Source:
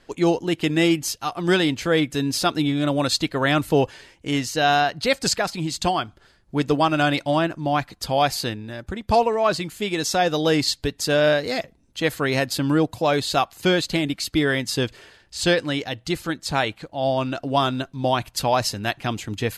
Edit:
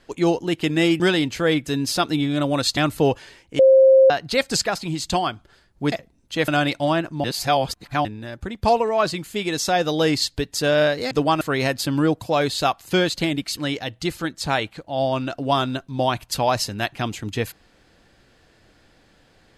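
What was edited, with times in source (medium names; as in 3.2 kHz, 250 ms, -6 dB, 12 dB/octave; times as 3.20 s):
1.00–1.46 s: delete
3.23–3.49 s: delete
4.31–4.82 s: bleep 531 Hz -8.5 dBFS
6.64–6.94 s: swap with 11.57–12.13 s
7.70–8.51 s: reverse
14.29–15.62 s: delete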